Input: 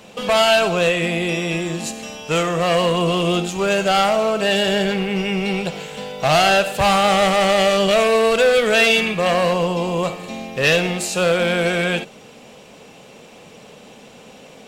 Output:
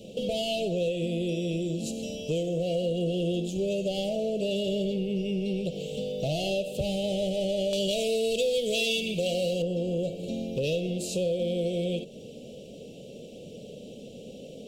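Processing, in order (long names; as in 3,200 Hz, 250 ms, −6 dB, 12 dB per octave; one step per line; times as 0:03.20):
elliptic band-stop filter 570–3,000 Hz, stop band 50 dB
high-shelf EQ 2,000 Hz −9 dB, from 0:07.73 +3.5 dB, from 0:09.62 −9.5 dB
downward compressor 3 to 1, threshold −31 dBFS, peak gain reduction 14 dB
level +2 dB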